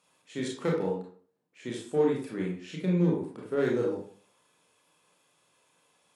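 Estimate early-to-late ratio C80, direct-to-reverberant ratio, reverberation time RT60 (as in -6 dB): 9.0 dB, -2.5 dB, 0.50 s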